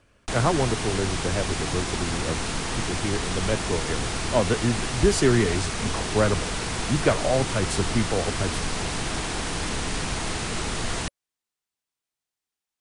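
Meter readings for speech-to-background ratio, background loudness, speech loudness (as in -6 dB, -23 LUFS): 2.0 dB, -28.5 LUFS, -26.5 LUFS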